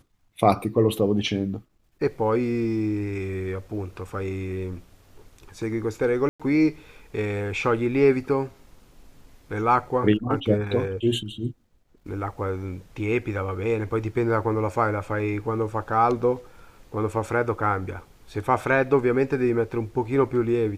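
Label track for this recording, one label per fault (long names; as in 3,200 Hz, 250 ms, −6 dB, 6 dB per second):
6.290000	6.400000	drop-out 106 ms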